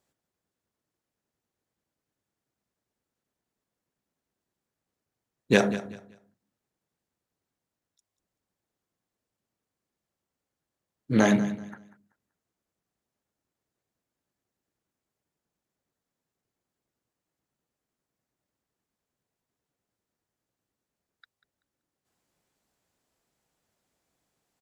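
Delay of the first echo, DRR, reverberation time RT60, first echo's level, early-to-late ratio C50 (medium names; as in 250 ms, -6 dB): 191 ms, no reverb, no reverb, -15.0 dB, no reverb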